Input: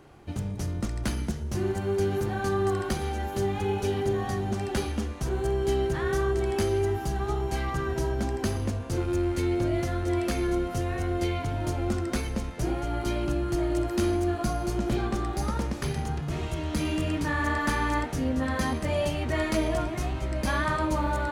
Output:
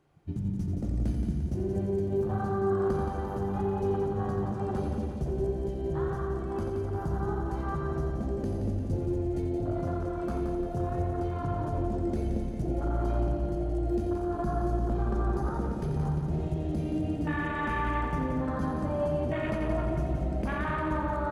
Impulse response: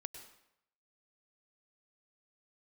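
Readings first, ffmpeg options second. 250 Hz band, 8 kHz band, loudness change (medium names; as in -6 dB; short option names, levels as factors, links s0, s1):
-2.0 dB, under -15 dB, -2.5 dB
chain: -filter_complex "[0:a]afwtdn=0.0316,equalizer=f=160:t=o:w=0.3:g=6,alimiter=limit=0.0631:level=0:latency=1,aecho=1:1:174|348|522|696|870|1044|1218:0.501|0.281|0.157|0.088|0.0493|0.0276|0.0155,asplit=2[s0][s1];[1:a]atrim=start_sample=2205,adelay=87[s2];[s1][s2]afir=irnorm=-1:irlink=0,volume=0.631[s3];[s0][s3]amix=inputs=2:normalize=0"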